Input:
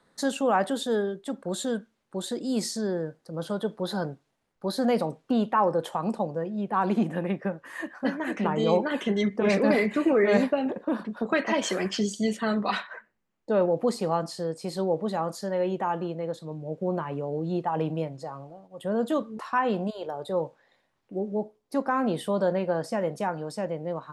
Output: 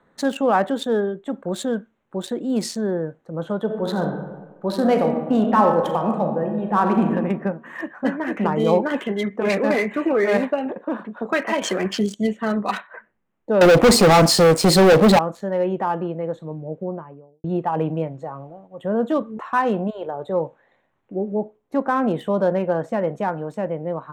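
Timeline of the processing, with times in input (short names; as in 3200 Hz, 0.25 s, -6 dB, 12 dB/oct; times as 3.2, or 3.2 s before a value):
3.63–7.13 reverb throw, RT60 1.2 s, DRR 2.5 dB
9.01–11.62 low shelf 340 Hz -7.5 dB
12.14–12.94 upward expander, over -39 dBFS
13.61–15.19 sample leveller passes 5
16.4–17.44 studio fade out
whole clip: Wiener smoothing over 9 samples; gain +5.5 dB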